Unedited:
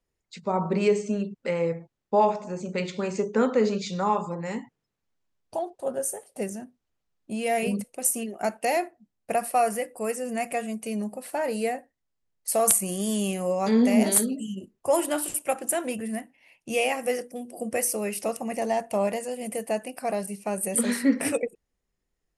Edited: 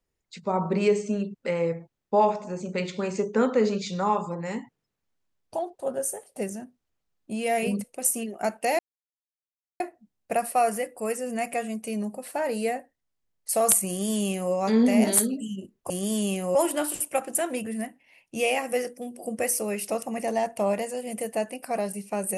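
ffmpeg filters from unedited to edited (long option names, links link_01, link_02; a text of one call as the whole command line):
ffmpeg -i in.wav -filter_complex "[0:a]asplit=4[link_01][link_02][link_03][link_04];[link_01]atrim=end=8.79,asetpts=PTS-STARTPTS,afade=type=out:start_time=8.786:duration=0.004:curve=hsin,apad=pad_dur=1.01[link_05];[link_02]atrim=start=8.79:end=14.892,asetpts=PTS-STARTPTS,afade=type=in:duration=0.004:curve=hsin[link_06];[link_03]atrim=start=12.868:end=13.522[link_07];[link_04]atrim=start=14.888[link_08];[link_05][link_06]concat=n=2:v=0:a=1[link_09];[link_09][link_07]acrossfade=duration=0.004:curve1=hsin:curve2=hsin[link_10];[link_10][link_08]acrossfade=duration=0.004:curve1=hsin:curve2=hsin" out.wav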